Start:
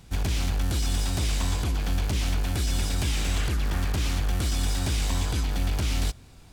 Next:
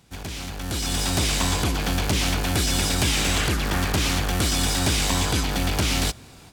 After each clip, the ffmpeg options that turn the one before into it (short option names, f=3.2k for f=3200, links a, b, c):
-af "highpass=f=170:p=1,dynaudnorm=f=540:g=3:m=12dB,volume=-2.5dB"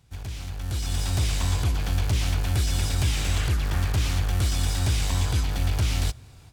-af "asoftclip=type=hard:threshold=-13.5dB,lowshelf=f=150:t=q:w=1.5:g=9,volume=-8dB"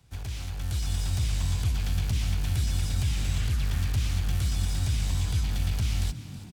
-filter_complex "[0:a]acrossover=split=160|560|1900[a][b][c][d];[a]acompressor=threshold=-23dB:ratio=4[e];[b]acompressor=threshold=-50dB:ratio=4[f];[c]acompressor=threshold=-51dB:ratio=4[g];[d]acompressor=threshold=-39dB:ratio=4[h];[e][f][g][h]amix=inputs=4:normalize=0,asplit=6[i][j][k][l][m][n];[j]adelay=324,afreqshift=49,volume=-15dB[o];[k]adelay=648,afreqshift=98,volume=-20.7dB[p];[l]adelay=972,afreqshift=147,volume=-26.4dB[q];[m]adelay=1296,afreqshift=196,volume=-32dB[r];[n]adelay=1620,afreqshift=245,volume=-37.7dB[s];[i][o][p][q][r][s]amix=inputs=6:normalize=0"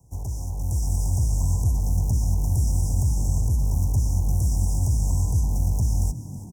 -af "asuperstop=centerf=2400:order=20:qfactor=0.53,volume=5dB"